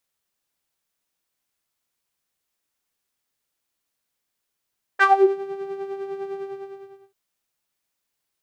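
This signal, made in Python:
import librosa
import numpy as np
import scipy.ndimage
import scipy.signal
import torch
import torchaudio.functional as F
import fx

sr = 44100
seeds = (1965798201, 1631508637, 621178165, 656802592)

y = fx.sub_patch_tremolo(sr, seeds[0], note=79, wave='saw', wave2='saw', interval_st=0, detune_cents=16, level2_db=-9.0, sub_db=-1.0, noise_db=-21, kind='bandpass', cutoff_hz=110.0, q=6.1, env_oct=4.0, env_decay_s=0.39, env_sustain_pct=15, attack_ms=46.0, decay_s=0.05, sustain_db=-9.5, release_s=0.75, note_s=1.39, lfo_hz=9.9, tremolo_db=6.5)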